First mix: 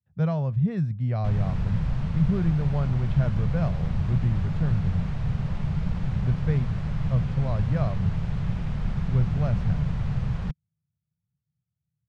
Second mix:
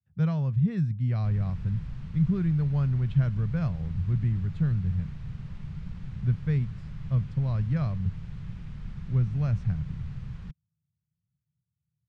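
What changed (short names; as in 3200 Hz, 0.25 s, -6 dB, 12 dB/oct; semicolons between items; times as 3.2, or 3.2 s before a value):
background -10.5 dB; master: add bell 650 Hz -10 dB 1.3 oct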